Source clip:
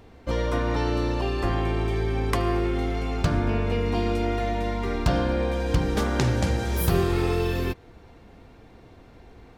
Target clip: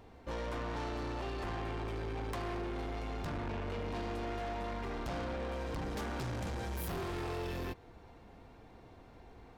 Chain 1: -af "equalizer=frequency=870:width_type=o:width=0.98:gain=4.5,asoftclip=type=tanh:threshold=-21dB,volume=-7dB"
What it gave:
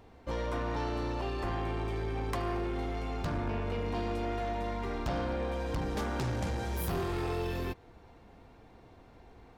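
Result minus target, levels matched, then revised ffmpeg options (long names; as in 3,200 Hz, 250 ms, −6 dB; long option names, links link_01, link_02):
soft clipping: distortion −6 dB
-af "equalizer=frequency=870:width_type=o:width=0.98:gain=4.5,asoftclip=type=tanh:threshold=-29dB,volume=-7dB"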